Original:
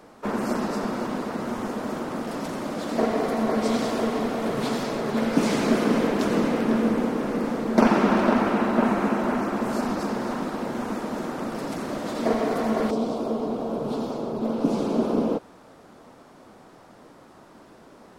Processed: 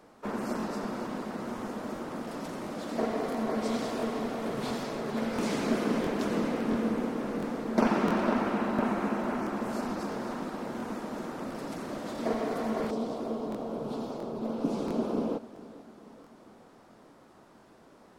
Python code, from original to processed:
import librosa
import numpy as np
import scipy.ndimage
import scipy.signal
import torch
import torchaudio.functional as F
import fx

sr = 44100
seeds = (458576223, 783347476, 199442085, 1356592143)

p1 = x + fx.echo_feedback(x, sr, ms=443, feedback_pct=54, wet_db=-18.0, dry=0)
p2 = fx.buffer_crackle(p1, sr, first_s=0.58, period_s=0.68, block=1024, kind='repeat')
y = p2 * 10.0 ** (-7.0 / 20.0)